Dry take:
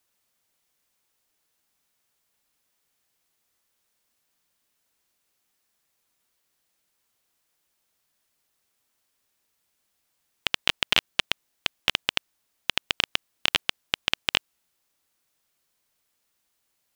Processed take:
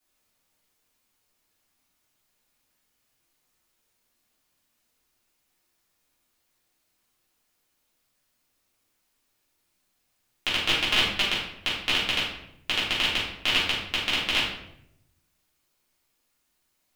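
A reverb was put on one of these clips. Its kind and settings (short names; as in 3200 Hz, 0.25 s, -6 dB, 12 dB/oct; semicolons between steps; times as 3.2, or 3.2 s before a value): shoebox room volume 180 m³, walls mixed, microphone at 3.2 m; gain -8 dB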